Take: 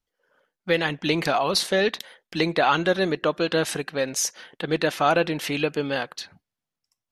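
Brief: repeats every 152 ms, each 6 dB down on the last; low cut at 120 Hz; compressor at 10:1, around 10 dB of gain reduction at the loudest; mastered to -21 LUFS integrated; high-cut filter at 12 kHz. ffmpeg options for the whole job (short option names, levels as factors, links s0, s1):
-af "highpass=120,lowpass=12000,acompressor=threshold=0.0501:ratio=10,aecho=1:1:152|304|456|608|760|912:0.501|0.251|0.125|0.0626|0.0313|0.0157,volume=2.82"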